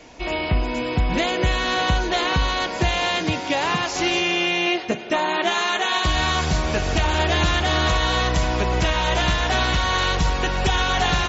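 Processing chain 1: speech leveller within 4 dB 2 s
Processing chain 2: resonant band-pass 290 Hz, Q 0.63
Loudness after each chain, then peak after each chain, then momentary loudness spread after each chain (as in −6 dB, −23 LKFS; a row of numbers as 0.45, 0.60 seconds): −21.0, −27.5 LKFS; −8.0, −11.5 dBFS; 3, 2 LU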